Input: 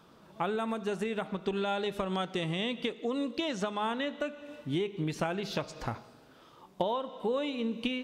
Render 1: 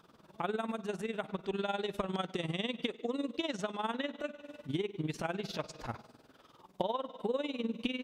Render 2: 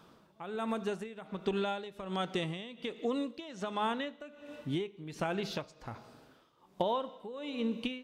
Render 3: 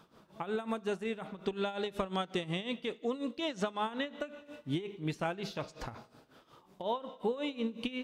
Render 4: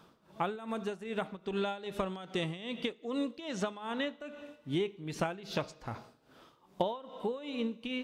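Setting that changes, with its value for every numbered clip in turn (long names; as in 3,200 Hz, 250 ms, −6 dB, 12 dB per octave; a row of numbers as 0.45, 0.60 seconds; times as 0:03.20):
amplitude tremolo, speed: 20, 1.3, 5.5, 2.5 Hertz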